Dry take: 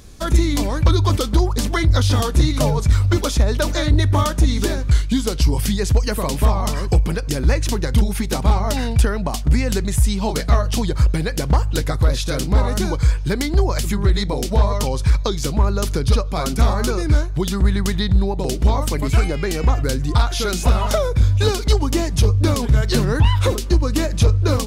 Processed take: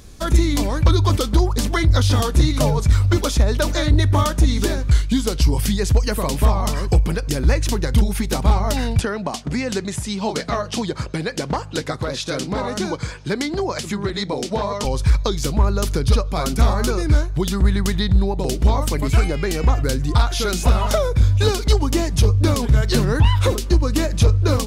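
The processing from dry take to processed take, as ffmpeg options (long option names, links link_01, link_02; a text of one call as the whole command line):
ffmpeg -i in.wav -filter_complex "[0:a]asettb=1/sr,asplit=3[link_01][link_02][link_03];[link_01]atrim=end=8.994[link_04];[link_02]atrim=start=8.99:end=14.85,asetpts=PTS-STARTPTS,afade=type=in:duration=0.004:curve=qsin,afade=type=out:start_time=5.856:duration=0.004:curve=qsin,highpass=170,lowpass=7800[link_05];[link_03]atrim=start=14.846[link_06];[link_04][link_05]acrossfade=duration=0.004:curve1=hsin:curve2=qsin[link_07];[link_07][link_06]acrossfade=duration=0.004:curve1=qsin:curve2=hsin" out.wav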